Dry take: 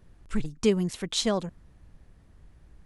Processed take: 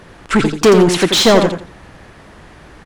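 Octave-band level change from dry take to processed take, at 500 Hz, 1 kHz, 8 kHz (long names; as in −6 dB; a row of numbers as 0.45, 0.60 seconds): +17.5, +21.0, +14.0 decibels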